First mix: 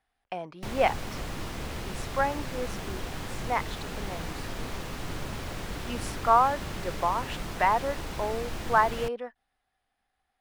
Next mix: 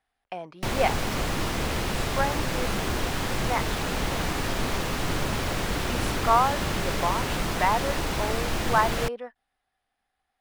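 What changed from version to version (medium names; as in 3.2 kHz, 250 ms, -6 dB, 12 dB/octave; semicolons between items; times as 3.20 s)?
background +9.5 dB; master: add bass shelf 190 Hz -3 dB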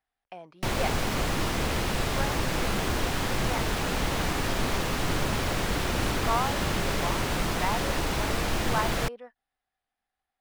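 speech -7.5 dB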